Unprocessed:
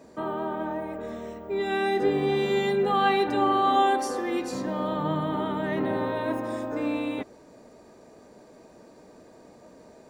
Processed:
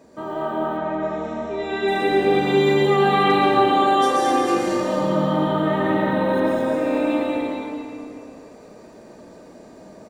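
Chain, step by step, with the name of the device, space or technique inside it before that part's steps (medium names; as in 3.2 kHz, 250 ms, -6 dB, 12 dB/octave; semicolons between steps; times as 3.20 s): cave (delay 226 ms -8 dB; reverberation RT60 2.8 s, pre-delay 108 ms, DRR -5.5 dB); 0.77–1.88 s: elliptic low-pass 7.3 kHz, stop band 40 dB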